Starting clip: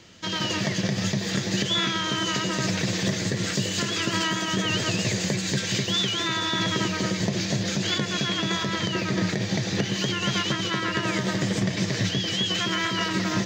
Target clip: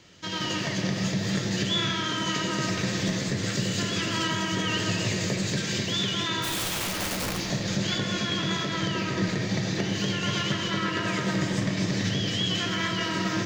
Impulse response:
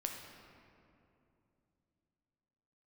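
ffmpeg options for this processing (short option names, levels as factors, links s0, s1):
-filter_complex "[0:a]asplit=3[s0][s1][s2];[s0]afade=t=out:st=6.42:d=0.02[s3];[s1]aeval=exprs='(mod(11.9*val(0)+1,2)-1)/11.9':c=same,afade=t=in:st=6.42:d=0.02,afade=t=out:st=7.36:d=0.02[s4];[s2]afade=t=in:st=7.36:d=0.02[s5];[s3][s4][s5]amix=inputs=3:normalize=0[s6];[1:a]atrim=start_sample=2205[s7];[s6][s7]afir=irnorm=-1:irlink=0,volume=0.794"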